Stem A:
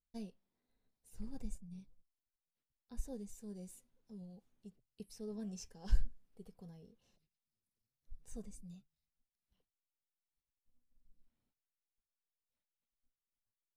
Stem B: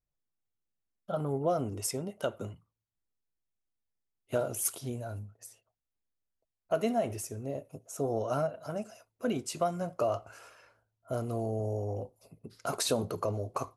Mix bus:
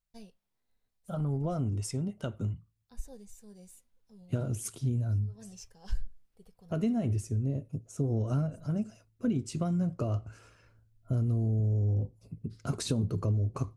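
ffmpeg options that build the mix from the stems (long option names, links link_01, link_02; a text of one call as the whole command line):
ffmpeg -i stem1.wav -i stem2.wav -filter_complex "[0:a]equalizer=frequency=270:width_type=o:width=1.7:gain=-8,volume=2dB[link_01];[1:a]lowpass=frequency=9700:width=0.5412,lowpass=frequency=9700:width=1.3066,asubboost=boost=11.5:cutoff=200,volume=-4.5dB,asplit=2[link_02][link_03];[link_03]apad=whole_len=607232[link_04];[link_01][link_04]sidechaincompress=threshold=-41dB:ratio=10:attack=16:release=192[link_05];[link_05][link_02]amix=inputs=2:normalize=0,acompressor=threshold=-25dB:ratio=6" out.wav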